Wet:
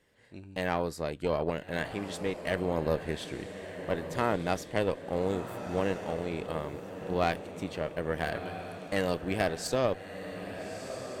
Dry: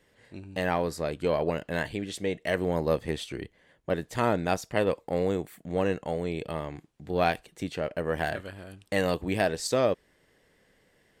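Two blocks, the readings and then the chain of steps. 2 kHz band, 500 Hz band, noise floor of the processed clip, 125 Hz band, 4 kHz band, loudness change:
-2.5 dB, -3.0 dB, -48 dBFS, -2.5 dB, -2.5 dB, -3.5 dB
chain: diffused feedback echo 1.302 s, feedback 43%, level -8.5 dB; tube stage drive 16 dB, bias 0.7

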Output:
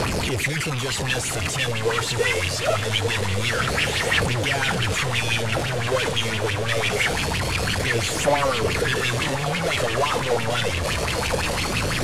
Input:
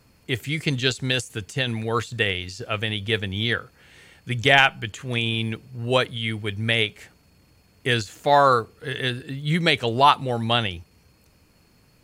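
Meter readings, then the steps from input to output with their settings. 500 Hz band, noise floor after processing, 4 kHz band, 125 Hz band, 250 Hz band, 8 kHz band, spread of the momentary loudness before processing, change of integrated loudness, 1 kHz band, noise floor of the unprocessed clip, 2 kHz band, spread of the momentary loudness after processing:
+2.0 dB, -26 dBFS, +1.0 dB, +2.5 dB, -0.5 dB, +12.5 dB, 13 LU, +0.5 dB, -2.5 dB, -59 dBFS, +2.0 dB, 3 LU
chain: infinite clipping; LPF 11000 Hz 24 dB/oct; phaser 0.24 Hz, delay 2.2 ms, feedback 38%; on a send: diffused feedback echo 1.082 s, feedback 66%, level -8 dB; on the sum: LFO bell 5.9 Hz 450–3000 Hz +13 dB; gain -3.5 dB

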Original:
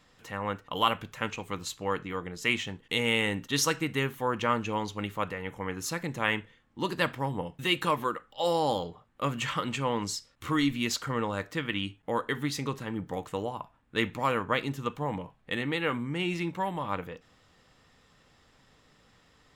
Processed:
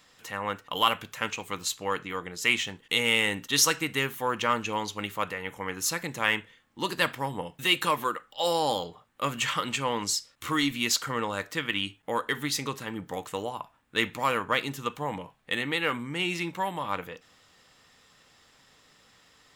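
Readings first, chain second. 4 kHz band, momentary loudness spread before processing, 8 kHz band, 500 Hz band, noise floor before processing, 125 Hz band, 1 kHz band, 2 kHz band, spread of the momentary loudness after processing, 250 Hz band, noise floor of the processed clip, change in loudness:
+5.0 dB, 8 LU, +7.0 dB, -0.5 dB, -64 dBFS, -4.0 dB, +1.5 dB, +3.5 dB, 10 LU, -2.0 dB, -64 dBFS, +2.5 dB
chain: tilt +2 dB/oct; in parallel at -12 dB: hard clip -22.5 dBFS, distortion -10 dB

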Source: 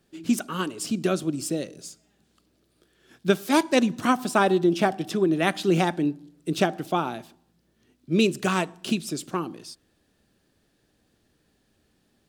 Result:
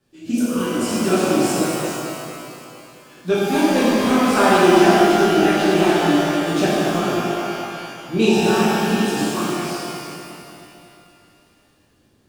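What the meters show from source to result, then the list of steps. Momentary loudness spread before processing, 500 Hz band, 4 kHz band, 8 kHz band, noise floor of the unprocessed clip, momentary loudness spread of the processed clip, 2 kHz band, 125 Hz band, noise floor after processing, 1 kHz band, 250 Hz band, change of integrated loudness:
12 LU, +8.5 dB, +8.0 dB, +7.5 dB, -69 dBFS, 16 LU, +8.0 dB, +5.5 dB, -58 dBFS, +8.0 dB, +7.5 dB, +7.0 dB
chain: regenerating reverse delay 0.112 s, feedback 76%, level -9.5 dB; in parallel at -3.5 dB: soft clip -14.5 dBFS, distortion -15 dB; on the sum: rotary speaker horn 0.6 Hz; shimmer reverb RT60 2.2 s, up +12 st, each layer -8 dB, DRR -10.5 dB; gain -6.5 dB

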